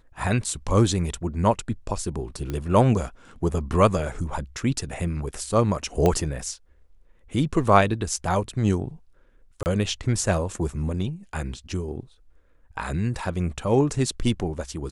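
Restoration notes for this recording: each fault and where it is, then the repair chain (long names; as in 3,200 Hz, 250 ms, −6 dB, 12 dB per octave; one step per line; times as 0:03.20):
0:02.50: click −17 dBFS
0:06.06: click −9 dBFS
0:09.63–0:09.66: drop-out 29 ms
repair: click removal
repair the gap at 0:09.63, 29 ms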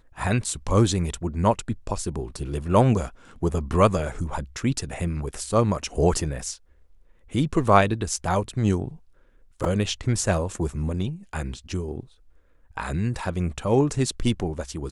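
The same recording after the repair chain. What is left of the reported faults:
none of them is left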